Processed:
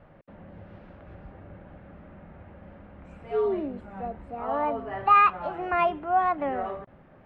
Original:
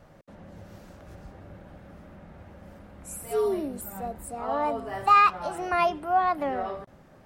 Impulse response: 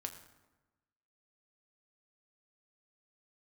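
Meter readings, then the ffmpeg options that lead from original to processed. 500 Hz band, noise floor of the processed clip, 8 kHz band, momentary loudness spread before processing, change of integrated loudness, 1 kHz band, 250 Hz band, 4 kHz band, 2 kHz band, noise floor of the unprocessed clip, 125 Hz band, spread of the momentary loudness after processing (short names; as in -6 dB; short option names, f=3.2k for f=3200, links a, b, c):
0.0 dB, -54 dBFS, under -35 dB, 17 LU, 0.0 dB, 0.0 dB, 0.0 dB, -5.0 dB, -0.5 dB, -54 dBFS, 0.0 dB, 18 LU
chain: -af "lowpass=f=2.9k:w=0.5412,lowpass=f=2.9k:w=1.3066"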